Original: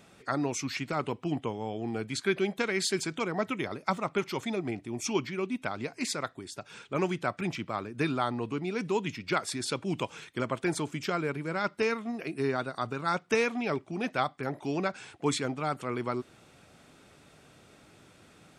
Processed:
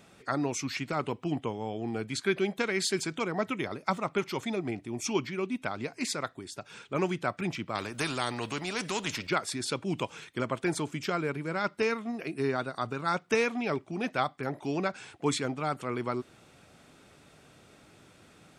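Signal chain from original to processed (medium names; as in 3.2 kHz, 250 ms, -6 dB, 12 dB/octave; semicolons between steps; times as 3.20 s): 7.75–9.27 s: spectrum-flattening compressor 2:1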